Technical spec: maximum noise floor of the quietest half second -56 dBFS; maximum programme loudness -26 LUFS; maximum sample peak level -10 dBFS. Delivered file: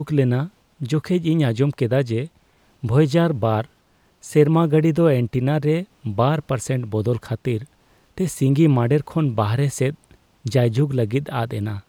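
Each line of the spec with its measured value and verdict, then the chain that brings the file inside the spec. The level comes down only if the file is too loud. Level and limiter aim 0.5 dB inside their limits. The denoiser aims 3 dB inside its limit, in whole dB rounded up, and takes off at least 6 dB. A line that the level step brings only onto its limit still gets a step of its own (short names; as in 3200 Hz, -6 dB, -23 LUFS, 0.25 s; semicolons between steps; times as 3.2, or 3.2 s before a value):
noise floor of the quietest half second -59 dBFS: OK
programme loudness -20.5 LUFS: fail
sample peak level -4.5 dBFS: fail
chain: gain -6 dB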